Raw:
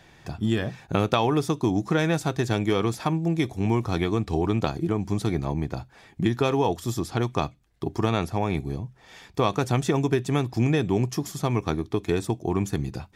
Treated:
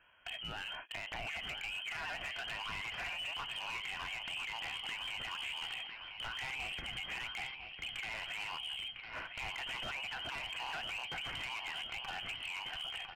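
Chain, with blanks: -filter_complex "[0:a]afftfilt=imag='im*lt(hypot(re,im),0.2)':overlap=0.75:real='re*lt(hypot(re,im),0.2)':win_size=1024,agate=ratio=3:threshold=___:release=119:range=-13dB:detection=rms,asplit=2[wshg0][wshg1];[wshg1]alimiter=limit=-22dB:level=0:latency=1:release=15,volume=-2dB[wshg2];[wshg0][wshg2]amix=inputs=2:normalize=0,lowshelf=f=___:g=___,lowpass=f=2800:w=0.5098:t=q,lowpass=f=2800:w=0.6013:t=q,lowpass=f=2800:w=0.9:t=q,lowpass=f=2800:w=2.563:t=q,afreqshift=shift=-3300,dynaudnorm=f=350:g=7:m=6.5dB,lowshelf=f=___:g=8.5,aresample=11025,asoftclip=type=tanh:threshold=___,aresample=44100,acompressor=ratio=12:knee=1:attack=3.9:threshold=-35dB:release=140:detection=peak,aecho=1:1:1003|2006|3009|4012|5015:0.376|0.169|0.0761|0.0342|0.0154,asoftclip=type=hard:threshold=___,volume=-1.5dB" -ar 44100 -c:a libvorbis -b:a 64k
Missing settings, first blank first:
-43dB, 480, -10.5, 190, -19.5dB, -34.5dB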